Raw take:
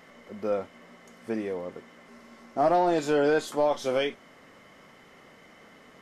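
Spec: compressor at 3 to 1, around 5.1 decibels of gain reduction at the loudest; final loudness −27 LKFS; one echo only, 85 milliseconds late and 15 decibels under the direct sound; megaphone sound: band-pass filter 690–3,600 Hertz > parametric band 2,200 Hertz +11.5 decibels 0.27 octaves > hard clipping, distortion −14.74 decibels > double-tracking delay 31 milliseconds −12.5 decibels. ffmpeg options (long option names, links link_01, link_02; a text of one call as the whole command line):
ffmpeg -i in.wav -filter_complex "[0:a]acompressor=threshold=-26dB:ratio=3,highpass=690,lowpass=3600,equalizer=frequency=2200:width_type=o:width=0.27:gain=11.5,aecho=1:1:85:0.178,asoftclip=type=hard:threshold=-29dB,asplit=2[link_01][link_02];[link_02]adelay=31,volume=-12.5dB[link_03];[link_01][link_03]amix=inputs=2:normalize=0,volume=10dB" out.wav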